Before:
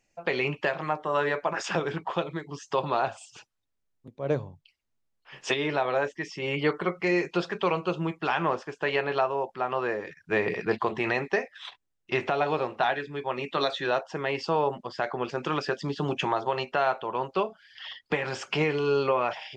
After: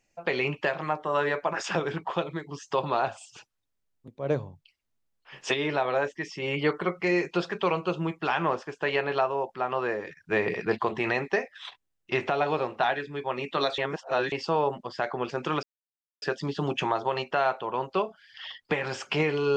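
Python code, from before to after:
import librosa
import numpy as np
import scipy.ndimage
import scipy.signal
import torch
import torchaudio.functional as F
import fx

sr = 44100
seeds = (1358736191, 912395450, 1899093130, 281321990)

y = fx.edit(x, sr, fx.reverse_span(start_s=13.78, length_s=0.54),
    fx.insert_silence(at_s=15.63, length_s=0.59), tone=tone)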